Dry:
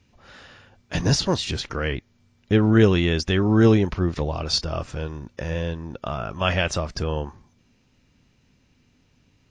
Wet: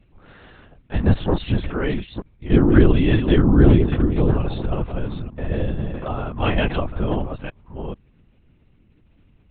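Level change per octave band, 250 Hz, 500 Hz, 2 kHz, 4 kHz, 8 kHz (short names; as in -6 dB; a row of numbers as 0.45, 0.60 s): +3.5 dB, +1.0 dB, -1.5 dB, -7.5 dB, under -40 dB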